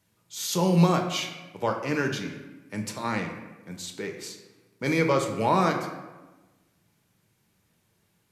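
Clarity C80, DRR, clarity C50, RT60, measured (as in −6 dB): 8.5 dB, 3.0 dB, 6.5 dB, 1.2 s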